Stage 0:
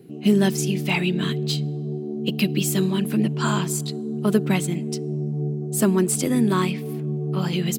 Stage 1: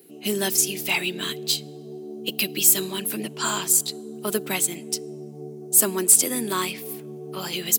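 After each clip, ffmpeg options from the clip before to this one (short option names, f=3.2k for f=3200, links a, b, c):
-af "highpass=350,aemphasis=mode=production:type=75kf,volume=-2.5dB"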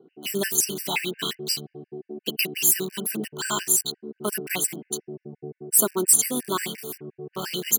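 -filter_complex "[0:a]acrossover=split=2200[a][b];[b]acrusher=bits=5:mix=0:aa=0.000001[c];[a][c]amix=inputs=2:normalize=0,afftfilt=real='re*gt(sin(2*PI*5.7*pts/sr)*(1-2*mod(floor(b*sr/1024/1500),2)),0)':imag='im*gt(sin(2*PI*5.7*pts/sr)*(1-2*mod(floor(b*sr/1024/1500),2)),0)':win_size=1024:overlap=0.75,volume=1.5dB"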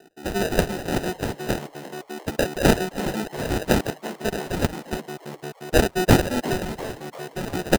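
-filter_complex "[0:a]acrusher=samples=40:mix=1:aa=0.000001,asplit=6[a][b][c][d][e][f];[b]adelay=347,afreqshift=140,volume=-15.5dB[g];[c]adelay=694,afreqshift=280,volume=-21.2dB[h];[d]adelay=1041,afreqshift=420,volume=-26.9dB[i];[e]adelay=1388,afreqshift=560,volume=-32.5dB[j];[f]adelay=1735,afreqshift=700,volume=-38.2dB[k];[a][g][h][i][j][k]amix=inputs=6:normalize=0,volume=2dB"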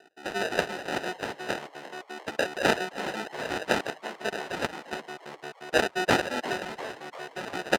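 -af "bandpass=f=1.7k:t=q:w=0.52:csg=0"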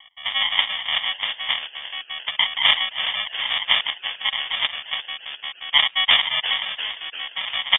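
-filter_complex "[0:a]asplit=2[a][b];[b]asoftclip=type=tanh:threshold=-18dB,volume=-3.5dB[c];[a][c]amix=inputs=2:normalize=0,lowpass=f=3.1k:t=q:w=0.5098,lowpass=f=3.1k:t=q:w=0.6013,lowpass=f=3.1k:t=q:w=0.9,lowpass=f=3.1k:t=q:w=2.563,afreqshift=-3700,volume=4dB"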